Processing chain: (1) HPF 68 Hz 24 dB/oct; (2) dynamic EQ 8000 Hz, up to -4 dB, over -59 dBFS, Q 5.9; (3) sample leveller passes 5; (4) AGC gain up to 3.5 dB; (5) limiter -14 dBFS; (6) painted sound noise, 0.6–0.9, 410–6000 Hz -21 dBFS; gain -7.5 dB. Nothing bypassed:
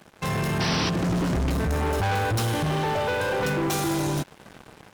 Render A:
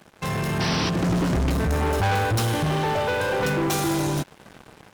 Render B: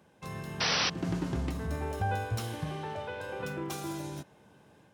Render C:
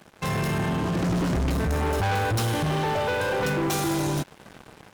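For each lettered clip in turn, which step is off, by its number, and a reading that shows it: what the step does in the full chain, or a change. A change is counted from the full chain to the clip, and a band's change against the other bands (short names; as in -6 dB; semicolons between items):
5, momentary loudness spread change +1 LU; 3, crest factor change +6.5 dB; 6, 4 kHz band -2.5 dB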